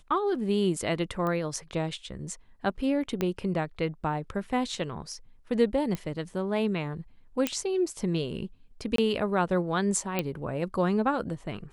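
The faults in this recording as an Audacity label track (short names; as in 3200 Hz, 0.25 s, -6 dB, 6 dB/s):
1.270000	1.270000	pop -20 dBFS
3.210000	3.210000	pop -14 dBFS
5.950000	5.950000	pop -19 dBFS
7.470000	7.470000	pop -10 dBFS
8.960000	8.980000	gap 23 ms
10.190000	10.190000	pop -13 dBFS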